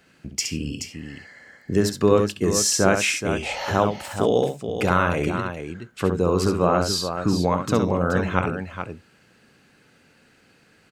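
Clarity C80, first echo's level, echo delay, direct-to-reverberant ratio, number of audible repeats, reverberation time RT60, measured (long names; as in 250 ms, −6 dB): no reverb audible, −6.5 dB, 67 ms, no reverb audible, 2, no reverb audible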